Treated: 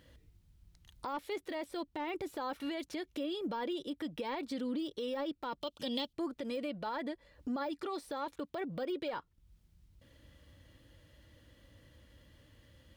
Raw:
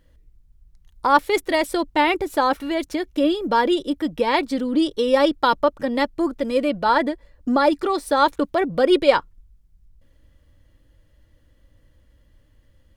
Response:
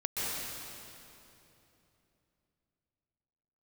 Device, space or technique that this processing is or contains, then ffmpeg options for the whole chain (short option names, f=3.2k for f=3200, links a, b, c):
broadcast voice chain: -filter_complex "[0:a]highpass=77,deesser=0.9,acompressor=threshold=-39dB:ratio=3,equalizer=f=3.4k:t=o:w=1.4:g=5,alimiter=level_in=7dB:limit=-24dB:level=0:latency=1:release=47,volume=-7dB,asettb=1/sr,asplit=3[a][b][c];[a]atrim=end=5.614[d];[b]atrim=start=5.61:end=6.13,asetpts=PTS-STARTPTS,afade=t=in:d=0.004:c=qsin,afade=t=out:st=0.516:d=0.004:c=qsin,highshelf=f=2.4k:t=q:w=3:g=9.5[e];[c]atrim=start=6.126[f];[d][e]acrossfade=d=0.004:c1=hsin:c2=qsin[g];[g][f]acrossfade=d=0.004:c1=qsin:c2=hsin,volume=1dB"